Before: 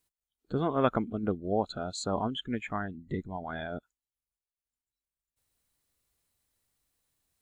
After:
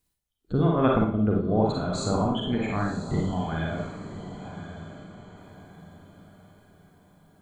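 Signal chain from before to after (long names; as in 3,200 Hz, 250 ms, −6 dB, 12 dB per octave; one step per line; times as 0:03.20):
low-shelf EQ 190 Hz +11.5 dB
feedback delay with all-pass diffusion 1,055 ms, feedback 40%, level −11 dB
four-comb reverb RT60 0.51 s, DRR −1 dB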